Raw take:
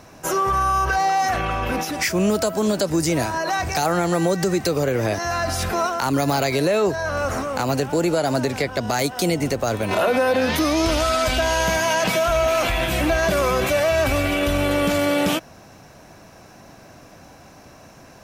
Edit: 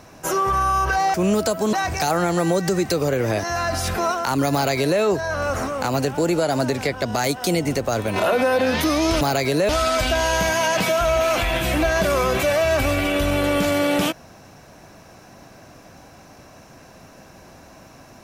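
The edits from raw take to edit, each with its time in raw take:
0:01.14–0:02.10: remove
0:02.69–0:03.48: remove
0:06.28–0:06.76: duplicate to 0:10.96

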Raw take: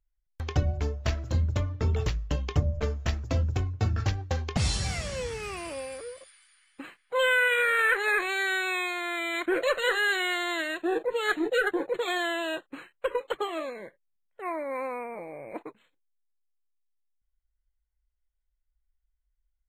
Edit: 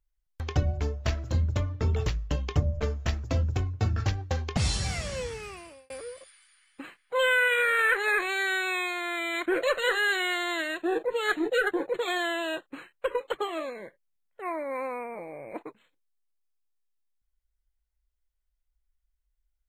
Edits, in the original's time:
0:05.18–0:05.90: fade out

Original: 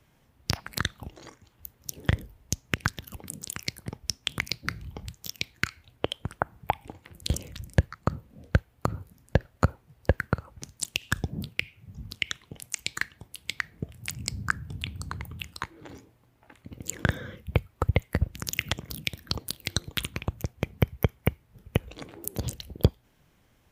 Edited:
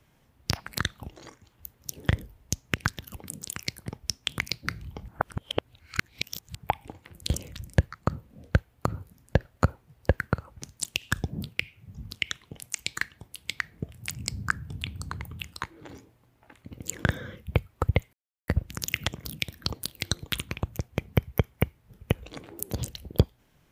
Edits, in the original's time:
0:05.08–0:06.55: reverse
0:18.13: splice in silence 0.35 s

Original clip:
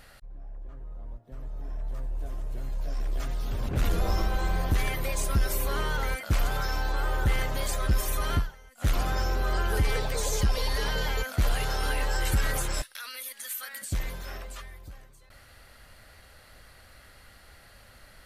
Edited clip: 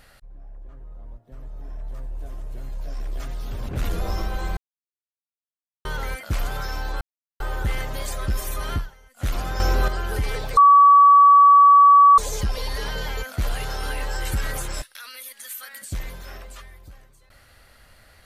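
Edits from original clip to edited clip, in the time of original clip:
0:04.57–0:05.85: silence
0:07.01: splice in silence 0.39 s
0:09.21–0:09.49: clip gain +7.5 dB
0:10.18: insert tone 1,140 Hz −8 dBFS 1.61 s

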